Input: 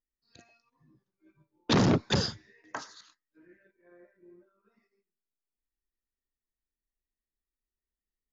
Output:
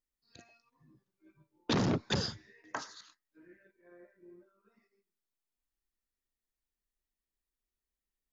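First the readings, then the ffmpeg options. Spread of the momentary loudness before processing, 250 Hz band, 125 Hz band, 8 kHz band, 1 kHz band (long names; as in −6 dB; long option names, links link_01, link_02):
19 LU, −6.0 dB, −6.0 dB, can't be measured, −5.5 dB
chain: -af "acompressor=threshold=-32dB:ratio=2"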